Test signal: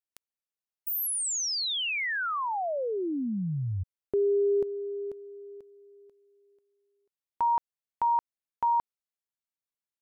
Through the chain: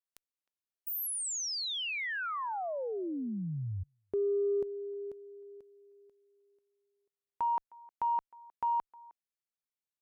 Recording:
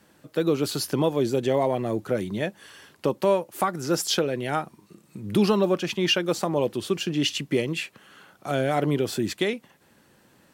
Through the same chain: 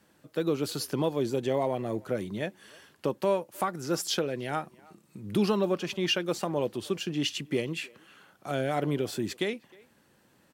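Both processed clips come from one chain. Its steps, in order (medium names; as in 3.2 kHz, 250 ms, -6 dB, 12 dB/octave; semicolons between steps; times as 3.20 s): speakerphone echo 310 ms, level -23 dB; Chebyshev shaper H 7 -41 dB, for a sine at -9.5 dBFS; trim -5 dB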